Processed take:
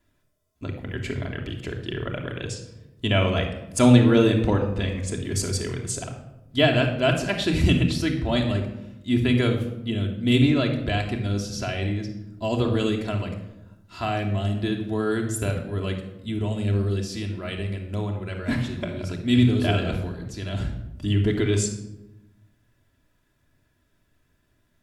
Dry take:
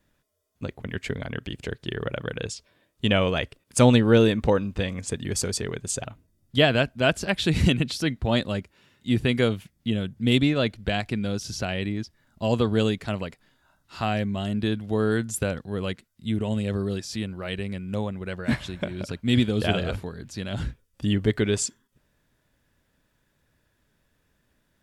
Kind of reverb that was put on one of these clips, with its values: simulated room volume 3200 m³, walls furnished, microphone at 3 m; trim -2.5 dB

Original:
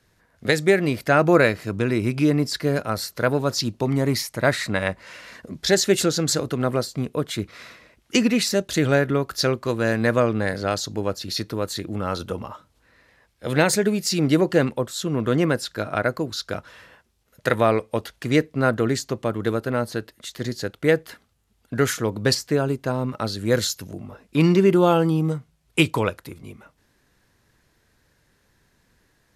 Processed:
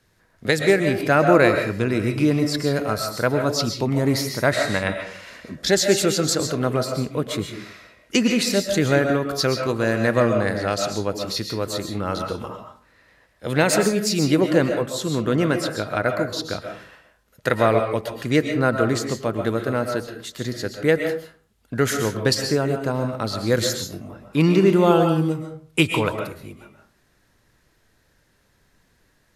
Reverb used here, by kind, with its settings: algorithmic reverb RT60 0.45 s, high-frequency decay 0.6×, pre-delay 90 ms, DRR 4.5 dB

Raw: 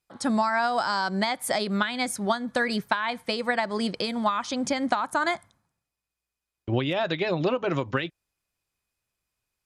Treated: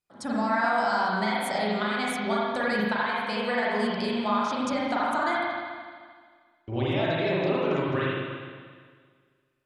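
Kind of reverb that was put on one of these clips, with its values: spring tank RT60 1.8 s, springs 38/43 ms, chirp 40 ms, DRR -7 dB; trim -7.5 dB

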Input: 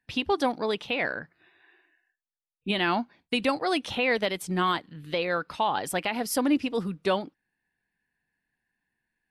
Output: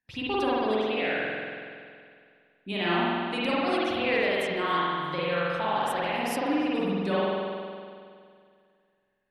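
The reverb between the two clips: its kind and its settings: spring tank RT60 2.2 s, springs 46 ms, chirp 35 ms, DRR -8 dB; trim -8 dB

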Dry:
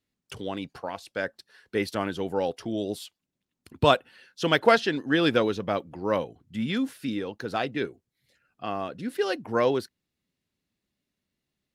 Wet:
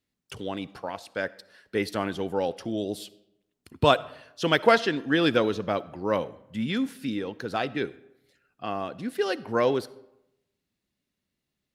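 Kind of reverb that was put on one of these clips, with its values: algorithmic reverb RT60 0.87 s, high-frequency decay 0.65×, pre-delay 20 ms, DRR 19 dB

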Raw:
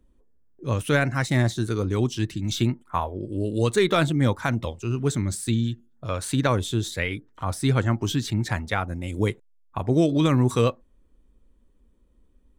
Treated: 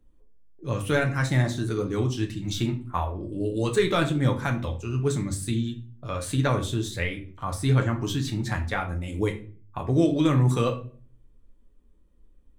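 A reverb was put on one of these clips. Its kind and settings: simulated room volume 32 m³, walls mixed, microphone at 0.37 m; trim -4 dB

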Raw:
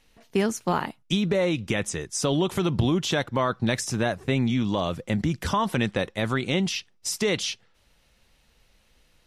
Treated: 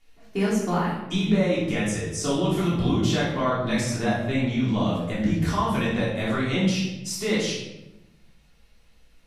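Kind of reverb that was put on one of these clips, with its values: simulated room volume 360 m³, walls mixed, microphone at 3.3 m; trim -9 dB

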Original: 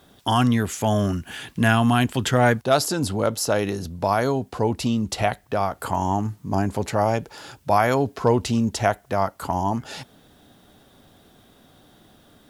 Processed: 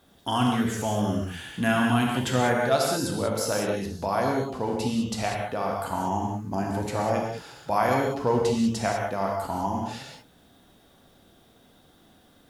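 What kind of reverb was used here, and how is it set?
gated-style reverb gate 220 ms flat, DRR -1 dB; trim -7 dB

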